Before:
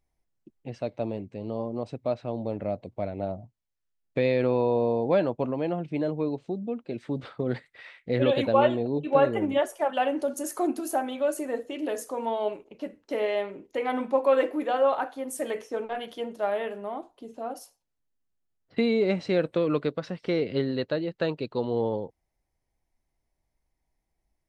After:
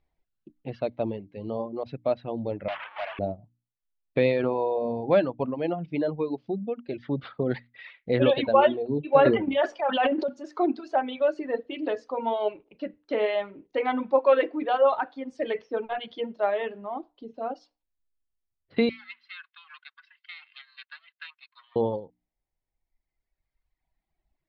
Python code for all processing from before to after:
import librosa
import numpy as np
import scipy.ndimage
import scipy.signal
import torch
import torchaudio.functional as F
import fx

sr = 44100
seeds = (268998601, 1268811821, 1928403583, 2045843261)

y = fx.chain(x, sr, fx.delta_mod(bps=16000, step_db=-33.0),
    fx.highpass(hz=800.0, slope=24),
    fx.leveller(passes=2), at=(2.68, 3.19))
y = fx.chain(y, sr, fx.transient(attack_db=-3, sustain_db=10),
    fx.low_shelf(hz=190.0, db=-4.0), at=(9.19, 10.29))
y = fx.chain(y, sr, fx.lower_of_two(delay_ms=1.9),
    fx.bessel_highpass(hz=2300.0, order=8),
    fx.air_absorb(metres=300.0), at=(18.89, 21.76))
y = scipy.signal.sosfilt(scipy.signal.butter(6, 4400.0, 'lowpass', fs=sr, output='sos'), y)
y = fx.hum_notches(y, sr, base_hz=60, count=5)
y = fx.dereverb_blind(y, sr, rt60_s=2.0)
y = F.gain(torch.from_numpy(y), 3.0).numpy()